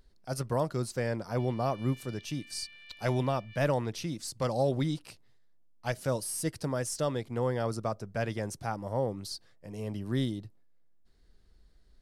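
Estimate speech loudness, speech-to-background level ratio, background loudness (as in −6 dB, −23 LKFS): −33.0 LKFS, 19.0 dB, −52.0 LKFS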